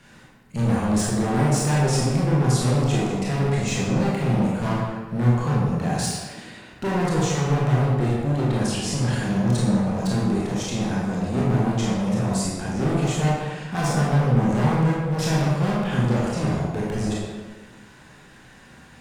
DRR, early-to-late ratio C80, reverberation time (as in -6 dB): -6.5 dB, 1.5 dB, 1.4 s